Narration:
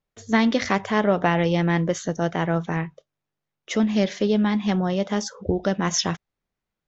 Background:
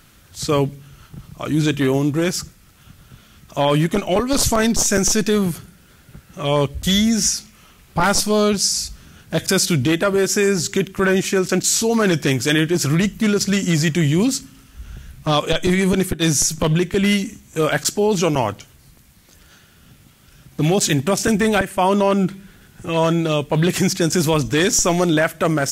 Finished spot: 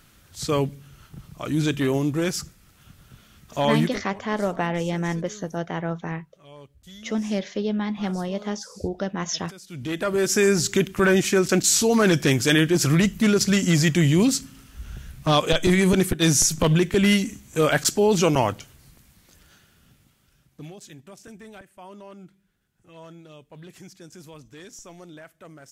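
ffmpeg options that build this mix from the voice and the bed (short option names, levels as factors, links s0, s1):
-filter_complex "[0:a]adelay=3350,volume=0.562[s0];[1:a]volume=11.9,afade=t=out:st=3.8:d=0.24:silence=0.0707946,afade=t=in:st=9.68:d=0.77:silence=0.0473151,afade=t=out:st=18.44:d=2.31:silence=0.0530884[s1];[s0][s1]amix=inputs=2:normalize=0"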